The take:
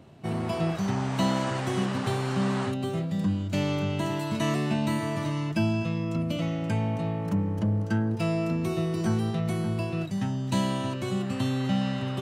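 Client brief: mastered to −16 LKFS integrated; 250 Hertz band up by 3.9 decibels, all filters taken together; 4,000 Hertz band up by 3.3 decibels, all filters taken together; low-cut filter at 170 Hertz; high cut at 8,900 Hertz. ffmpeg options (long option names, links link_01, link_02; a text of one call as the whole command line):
ffmpeg -i in.wav -af "highpass=170,lowpass=8900,equalizer=frequency=250:width_type=o:gain=7,equalizer=frequency=4000:width_type=o:gain=4.5,volume=10dB" out.wav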